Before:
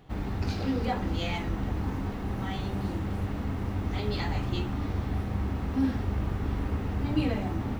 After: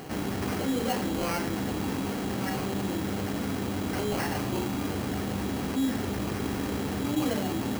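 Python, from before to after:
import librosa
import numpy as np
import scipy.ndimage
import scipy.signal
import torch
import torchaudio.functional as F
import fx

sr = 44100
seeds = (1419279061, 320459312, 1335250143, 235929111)

y = scipy.signal.sosfilt(scipy.signal.bessel(2, 240.0, 'highpass', norm='mag', fs=sr, output='sos'), x)
y = fx.peak_eq(y, sr, hz=1000.0, db=-4.5, octaves=1.2)
y = fx.sample_hold(y, sr, seeds[0], rate_hz=3600.0, jitter_pct=0)
y = fx.mod_noise(y, sr, seeds[1], snr_db=22)
y = fx.env_flatten(y, sr, amount_pct=50)
y = F.gain(torch.from_numpy(y), 1.0).numpy()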